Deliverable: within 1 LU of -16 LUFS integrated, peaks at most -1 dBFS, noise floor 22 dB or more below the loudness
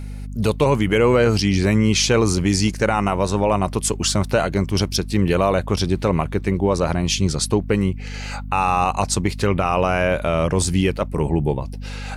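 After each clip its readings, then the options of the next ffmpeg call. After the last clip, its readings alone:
hum 50 Hz; harmonics up to 250 Hz; hum level -28 dBFS; loudness -19.5 LUFS; peak -6.5 dBFS; loudness target -16.0 LUFS
-> -af "bandreject=f=50:t=h:w=6,bandreject=f=100:t=h:w=6,bandreject=f=150:t=h:w=6,bandreject=f=200:t=h:w=6,bandreject=f=250:t=h:w=6"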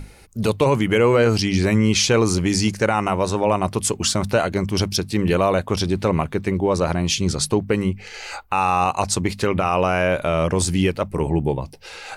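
hum none; loudness -20.0 LUFS; peak -6.5 dBFS; loudness target -16.0 LUFS
-> -af "volume=4dB"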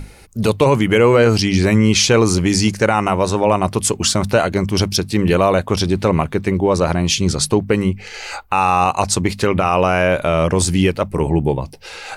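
loudness -16.0 LUFS; peak -2.5 dBFS; noise floor -38 dBFS

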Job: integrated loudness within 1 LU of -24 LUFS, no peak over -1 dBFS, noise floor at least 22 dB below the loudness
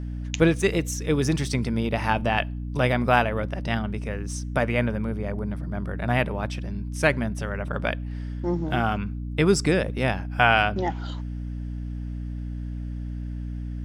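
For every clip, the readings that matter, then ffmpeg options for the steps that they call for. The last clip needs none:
hum 60 Hz; harmonics up to 300 Hz; hum level -29 dBFS; loudness -26.0 LUFS; peak -4.0 dBFS; loudness target -24.0 LUFS
-> -af "bandreject=f=60:t=h:w=4,bandreject=f=120:t=h:w=4,bandreject=f=180:t=h:w=4,bandreject=f=240:t=h:w=4,bandreject=f=300:t=h:w=4"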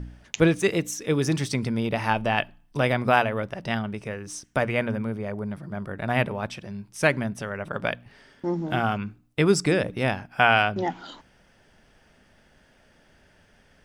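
hum none; loudness -25.5 LUFS; peak -4.0 dBFS; loudness target -24.0 LUFS
-> -af "volume=1.5dB"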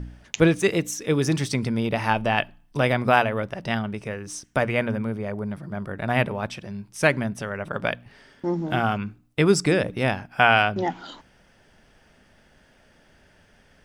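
loudness -24.0 LUFS; peak -2.5 dBFS; noise floor -58 dBFS

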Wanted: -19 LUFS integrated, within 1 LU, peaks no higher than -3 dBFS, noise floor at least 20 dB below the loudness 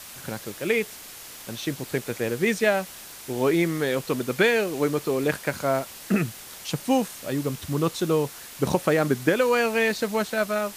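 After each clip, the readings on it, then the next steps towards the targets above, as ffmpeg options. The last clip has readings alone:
noise floor -42 dBFS; noise floor target -45 dBFS; loudness -25.0 LUFS; peak -7.0 dBFS; loudness target -19.0 LUFS
-> -af "afftdn=nr=6:nf=-42"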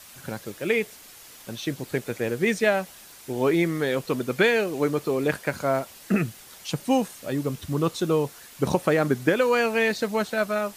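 noise floor -47 dBFS; loudness -25.0 LUFS; peak -7.0 dBFS; loudness target -19.0 LUFS
-> -af "volume=6dB,alimiter=limit=-3dB:level=0:latency=1"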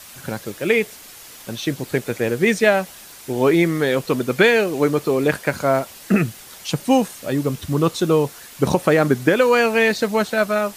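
loudness -19.0 LUFS; peak -3.0 dBFS; noise floor -41 dBFS

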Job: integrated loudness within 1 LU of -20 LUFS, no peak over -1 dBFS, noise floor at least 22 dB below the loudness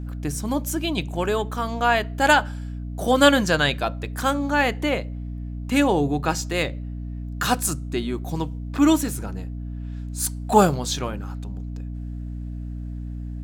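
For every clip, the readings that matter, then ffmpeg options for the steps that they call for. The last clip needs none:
hum 60 Hz; harmonics up to 300 Hz; hum level -29 dBFS; loudness -22.5 LUFS; peak -3.0 dBFS; loudness target -20.0 LUFS
-> -af "bandreject=f=60:t=h:w=6,bandreject=f=120:t=h:w=6,bandreject=f=180:t=h:w=6,bandreject=f=240:t=h:w=6,bandreject=f=300:t=h:w=6"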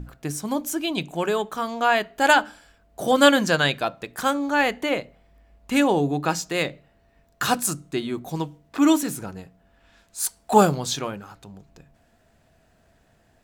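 hum none; loudness -23.0 LUFS; peak -3.0 dBFS; loudness target -20.0 LUFS
-> -af "volume=3dB,alimiter=limit=-1dB:level=0:latency=1"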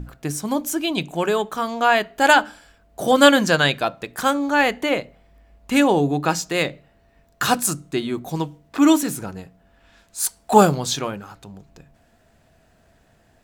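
loudness -20.0 LUFS; peak -1.0 dBFS; noise floor -59 dBFS

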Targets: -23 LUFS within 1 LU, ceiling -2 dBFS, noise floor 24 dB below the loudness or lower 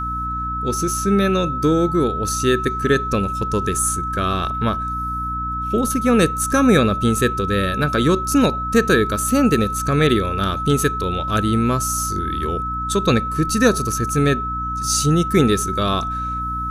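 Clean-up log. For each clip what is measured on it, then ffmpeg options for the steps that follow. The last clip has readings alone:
hum 60 Hz; harmonics up to 300 Hz; hum level -27 dBFS; steady tone 1300 Hz; tone level -23 dBFS; loudness -19.0 LUFS; peak -2.0 dBFS; loudness target -23.0 LUFS
-> -af "bandreject=f=60:t=h:w=4,bandreject=f=120:t=h:w=4,bandreject=f=180:t=h:w=4,bandreject=f=240:t=h:w=4,bandreject=f=300:t=h:w=4"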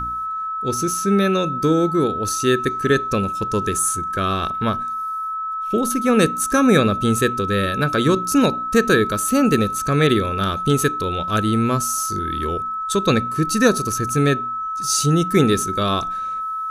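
hum none; steady tone 1300 Hz; tone level -23 dBFS
-> -af "bandreject=f=1.3k:w=30"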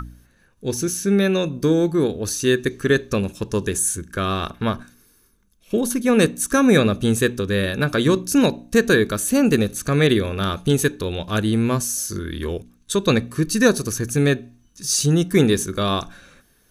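steady tone none; loudness -20.0 LUFS; peak -2.0 dBFS; loudness target -23.0 LUFS
-> -af "volume=-3dB"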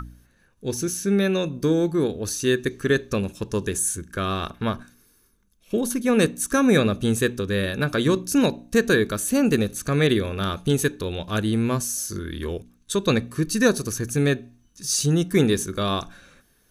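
loudness -23.0 LUFS; peak -5.0 dBFS; noise floor -62 dBFS

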